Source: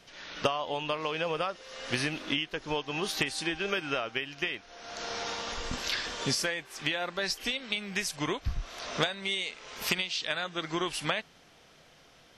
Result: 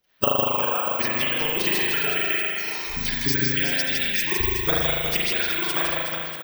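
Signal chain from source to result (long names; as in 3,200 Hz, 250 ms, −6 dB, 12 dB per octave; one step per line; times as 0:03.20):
noise reduction from a noise print of the clip's start 25 dB
harmonic and percussive parts rebalanced harmonic −12 dB
reversed playback
upward compression, threshold −38 dBFS
reversed playback
phase-vocoder stretch with locked phases 0.52×
on a send: reverse bouncing-ball delay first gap 160 ms, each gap 1.3×, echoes 5
on the sum: spring reverb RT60 1.5 s, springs 38 ms, chirp 60 ms, DRR −4 dB
bad sample-rate conversion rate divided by 2×, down filtered, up zero stuff
level +6 dB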